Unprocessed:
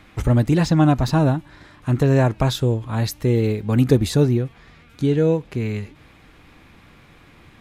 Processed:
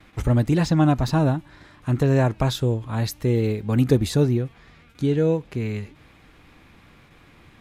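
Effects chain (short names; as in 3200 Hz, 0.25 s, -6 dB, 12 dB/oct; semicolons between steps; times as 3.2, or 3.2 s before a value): gate with hold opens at -40 dBFS; gain -2.5 dB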